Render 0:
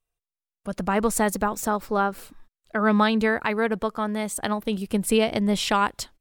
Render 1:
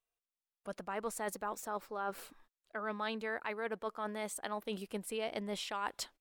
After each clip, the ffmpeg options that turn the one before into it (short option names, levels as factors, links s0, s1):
-af "bass=f=250:g=-14,treble=f=4000:g=-3,areverse,acompressor=threshold=0.0251:ratio=5,areverse,volume=0.631"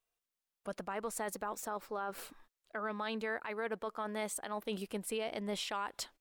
-af "alimiter=level_in=2.24:limit=0.0631:level=0:latency=1:release=113,volume=0.447,volume=1.41"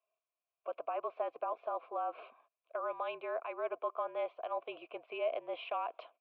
-filter_complex "[0:a]asplit=3[s0][s1][s2];[s0]bandpass=f=730:t=q:w=8,volume=1[s3];[s1]bandpass=f=1090:t=q:w=8,volume=0.501[s4];[s2]bandpass=f=2440:t=q:w=8,volume=0.355[s5];[s3][s4][s5]amix=inputs=3:normalize=0,highpass=f=390:t=q:w=0.5412,highpass=f=390:t=q:w=1.307,lowpass=f=3400:t=q:w=0.5176,lowpass=f=3400:t=q:w=0.7071,lowpass=f=3400:t=q:w=1.932,afreqshift=-52,volume=3.76"